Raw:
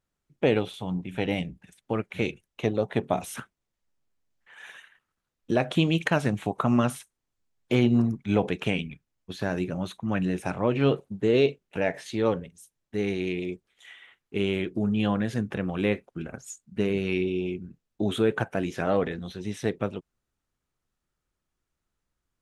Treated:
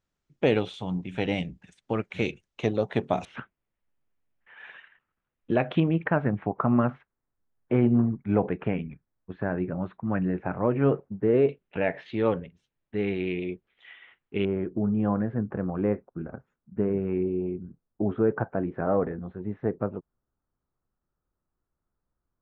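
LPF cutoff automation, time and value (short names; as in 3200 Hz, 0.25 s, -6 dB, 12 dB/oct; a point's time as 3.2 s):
LPF 24 dB/oct
7300 Hz
from 3.25 s 2900 Hz
from 5.8 s 1800 Hz
from 11.49 s 3100 Hz
from 14.45 s 1400 Hz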